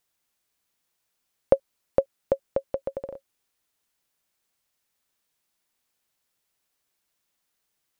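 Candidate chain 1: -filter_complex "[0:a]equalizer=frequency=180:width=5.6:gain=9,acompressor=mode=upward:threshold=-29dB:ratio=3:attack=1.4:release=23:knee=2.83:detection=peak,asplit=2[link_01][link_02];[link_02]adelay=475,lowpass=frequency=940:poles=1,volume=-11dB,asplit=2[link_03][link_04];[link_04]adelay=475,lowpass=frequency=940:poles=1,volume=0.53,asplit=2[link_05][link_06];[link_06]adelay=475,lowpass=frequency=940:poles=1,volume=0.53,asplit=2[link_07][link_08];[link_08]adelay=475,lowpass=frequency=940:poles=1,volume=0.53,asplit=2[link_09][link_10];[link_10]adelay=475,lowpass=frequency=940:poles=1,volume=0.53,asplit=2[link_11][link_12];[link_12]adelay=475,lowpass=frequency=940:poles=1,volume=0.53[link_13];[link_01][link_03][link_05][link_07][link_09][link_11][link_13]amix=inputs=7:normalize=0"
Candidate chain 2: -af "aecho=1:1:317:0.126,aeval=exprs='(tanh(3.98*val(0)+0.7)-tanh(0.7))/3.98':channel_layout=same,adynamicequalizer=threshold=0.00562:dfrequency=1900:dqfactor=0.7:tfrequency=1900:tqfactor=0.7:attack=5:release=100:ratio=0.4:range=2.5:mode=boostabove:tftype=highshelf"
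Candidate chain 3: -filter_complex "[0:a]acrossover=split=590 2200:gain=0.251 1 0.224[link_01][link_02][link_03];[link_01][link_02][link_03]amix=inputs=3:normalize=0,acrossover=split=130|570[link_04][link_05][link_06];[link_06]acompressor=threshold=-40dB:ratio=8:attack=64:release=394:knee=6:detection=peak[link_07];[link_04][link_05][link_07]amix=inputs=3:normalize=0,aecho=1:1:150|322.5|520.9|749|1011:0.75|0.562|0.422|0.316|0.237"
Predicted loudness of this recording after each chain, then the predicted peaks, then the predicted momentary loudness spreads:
−30.5, −33.5, −33.5 LKFS; −3.5, −8.5, −11.0 dBFS; 17, 12, 16 LU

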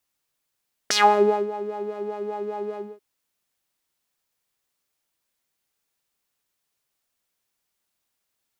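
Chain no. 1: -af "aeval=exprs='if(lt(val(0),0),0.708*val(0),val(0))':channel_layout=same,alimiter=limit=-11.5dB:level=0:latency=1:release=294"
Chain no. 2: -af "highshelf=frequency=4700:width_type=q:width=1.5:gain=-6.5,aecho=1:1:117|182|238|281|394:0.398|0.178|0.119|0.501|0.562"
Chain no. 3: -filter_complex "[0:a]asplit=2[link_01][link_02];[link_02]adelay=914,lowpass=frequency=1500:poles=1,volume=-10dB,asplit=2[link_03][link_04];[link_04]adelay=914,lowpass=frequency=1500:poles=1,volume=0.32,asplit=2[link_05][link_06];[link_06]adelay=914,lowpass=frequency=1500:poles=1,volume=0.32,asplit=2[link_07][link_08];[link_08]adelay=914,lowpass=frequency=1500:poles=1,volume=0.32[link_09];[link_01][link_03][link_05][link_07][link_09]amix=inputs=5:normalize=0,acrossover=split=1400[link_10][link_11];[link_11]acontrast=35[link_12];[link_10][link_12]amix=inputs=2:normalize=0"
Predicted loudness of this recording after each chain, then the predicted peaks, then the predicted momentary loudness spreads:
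−27.5, −21.5, −22.5 LKFS; −11.5, −4.5, −3.5 dBFS; 12, 15, 23 LU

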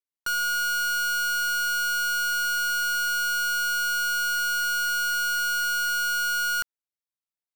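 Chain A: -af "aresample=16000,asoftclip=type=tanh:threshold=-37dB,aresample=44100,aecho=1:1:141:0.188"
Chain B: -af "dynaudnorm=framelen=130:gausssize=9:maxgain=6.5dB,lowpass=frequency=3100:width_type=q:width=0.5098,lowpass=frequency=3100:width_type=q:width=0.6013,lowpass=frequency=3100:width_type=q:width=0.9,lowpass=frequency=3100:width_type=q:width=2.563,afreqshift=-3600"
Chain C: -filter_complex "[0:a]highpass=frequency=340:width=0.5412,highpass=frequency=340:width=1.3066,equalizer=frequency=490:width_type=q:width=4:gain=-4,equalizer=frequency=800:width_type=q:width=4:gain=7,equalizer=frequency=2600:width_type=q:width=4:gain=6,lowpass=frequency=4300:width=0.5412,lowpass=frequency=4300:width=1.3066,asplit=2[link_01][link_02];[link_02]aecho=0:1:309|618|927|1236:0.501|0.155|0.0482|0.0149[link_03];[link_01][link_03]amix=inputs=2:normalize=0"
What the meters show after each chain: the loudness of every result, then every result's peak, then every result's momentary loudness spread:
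−34.5, −17.5, −20.5 LKFS; −33.0, −15.5, −17.0 dBFS; 1, 2, 5 LU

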